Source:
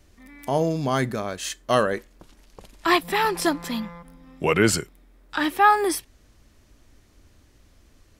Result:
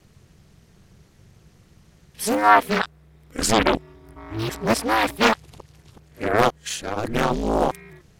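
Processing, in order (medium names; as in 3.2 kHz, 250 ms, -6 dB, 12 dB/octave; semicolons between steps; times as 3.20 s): reverse the whole clip; ring modulator 110 Hz; loudspeaker Doppler distortion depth 0.95 ms; trim +5 dB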